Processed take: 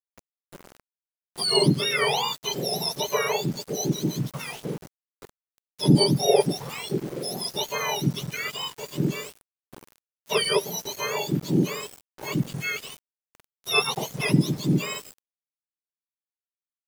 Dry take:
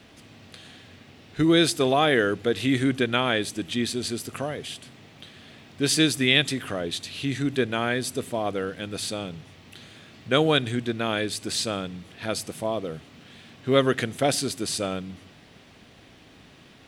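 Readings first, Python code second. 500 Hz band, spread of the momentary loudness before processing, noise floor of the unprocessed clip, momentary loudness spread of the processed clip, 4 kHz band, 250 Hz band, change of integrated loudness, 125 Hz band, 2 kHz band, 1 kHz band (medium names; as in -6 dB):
-1.5 dB, 14 LU, -52 dBFS, 13 LU, 0.0 dB, -1.0 dB, -0.5 dB, +4.0 dB, -3.0 dB, -1.0 dB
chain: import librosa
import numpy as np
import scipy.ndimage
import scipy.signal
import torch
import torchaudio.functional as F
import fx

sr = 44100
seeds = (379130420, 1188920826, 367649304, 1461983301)

y = fx.octave_mirror(x, sr, pivot_hz=1200.0)
y = np.where(np.abs(y) >= 10.0 ** (-37.5 / 20.0), y, 0.0)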